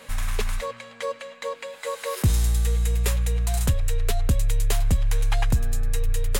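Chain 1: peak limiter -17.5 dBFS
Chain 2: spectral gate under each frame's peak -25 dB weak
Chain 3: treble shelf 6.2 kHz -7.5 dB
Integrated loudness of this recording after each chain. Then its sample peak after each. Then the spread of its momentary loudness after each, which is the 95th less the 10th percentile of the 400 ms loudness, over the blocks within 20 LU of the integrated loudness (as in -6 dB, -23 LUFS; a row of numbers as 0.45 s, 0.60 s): -28.0 LUFS, -34.5 LUFS, -26.0 LUFS; -17.5 dBFS, -15.0 dBFS, -12.0 dBFS; 7 LU, 16 LU, 10 LU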